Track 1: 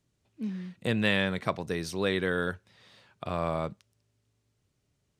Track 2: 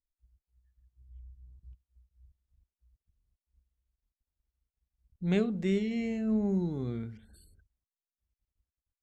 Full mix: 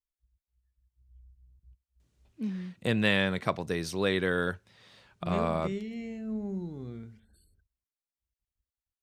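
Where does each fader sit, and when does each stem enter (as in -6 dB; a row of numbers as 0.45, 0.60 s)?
+0.5, -6.0 dB; 2.00, 0.00 s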